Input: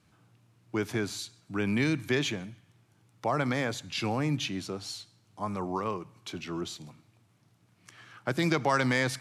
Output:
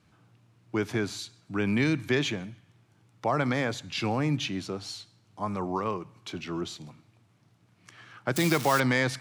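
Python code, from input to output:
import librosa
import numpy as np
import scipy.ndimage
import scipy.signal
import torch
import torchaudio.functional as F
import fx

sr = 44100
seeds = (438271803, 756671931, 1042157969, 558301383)

y = fx.crossing_spikes(x, sr, level_db=-20.0, at=(8.36, 8.8))
y = fx.high_shelf(y, sr, hz=8700.0, db=-9.0)
y = y * 10.0 ** (2.0 / 20.0)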